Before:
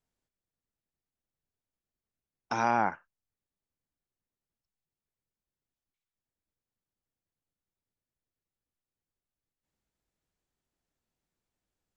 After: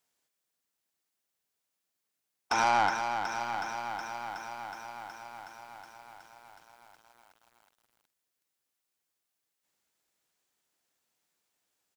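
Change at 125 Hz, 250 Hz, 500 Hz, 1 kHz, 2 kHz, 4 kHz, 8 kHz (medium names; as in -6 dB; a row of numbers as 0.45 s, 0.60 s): -3.0 dB, -4.0 dB, 0.0 dB, +4.0 dB, +5.5 dB, +12.5 dB, no reading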